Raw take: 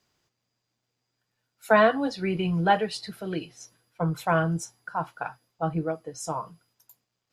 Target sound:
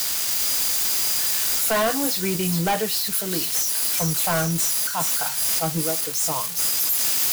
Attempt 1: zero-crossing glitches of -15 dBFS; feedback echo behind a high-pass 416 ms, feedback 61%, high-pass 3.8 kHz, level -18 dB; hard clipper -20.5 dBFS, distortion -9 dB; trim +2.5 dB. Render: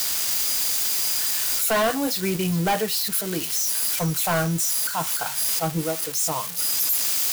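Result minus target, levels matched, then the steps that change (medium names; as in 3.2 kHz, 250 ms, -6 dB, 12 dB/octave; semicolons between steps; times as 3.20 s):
zero-crossing glitches: distortion -10 dB
change: zero-crossing glitches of -4 dBFS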